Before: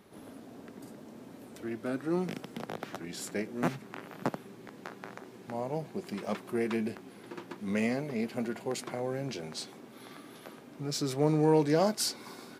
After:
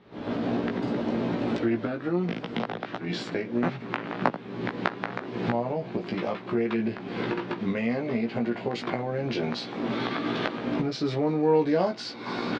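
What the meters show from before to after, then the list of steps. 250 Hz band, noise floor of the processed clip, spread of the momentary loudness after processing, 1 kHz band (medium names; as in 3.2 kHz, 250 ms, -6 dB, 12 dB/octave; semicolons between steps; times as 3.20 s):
+6.5 dB, -40 dBFS, 7 LU, +7.0 dB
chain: recorder AGC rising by 57 dB/s; low-pass 4.1 kHz 24 dB/octave; doubling 17 ms -3.5 dB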